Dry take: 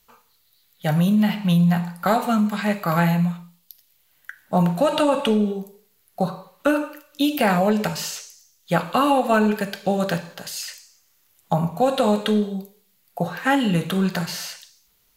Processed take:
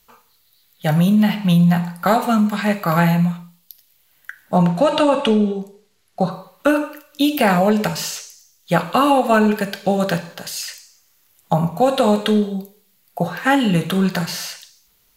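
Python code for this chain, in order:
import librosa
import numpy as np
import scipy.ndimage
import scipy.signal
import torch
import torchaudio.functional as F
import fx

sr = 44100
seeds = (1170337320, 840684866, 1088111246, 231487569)

y = fx.lowpass(x, sr, hz=7800.0, slope=12, at=(4.57, 6.31))
y = y * 10.0 ** (3.5 / 20.0)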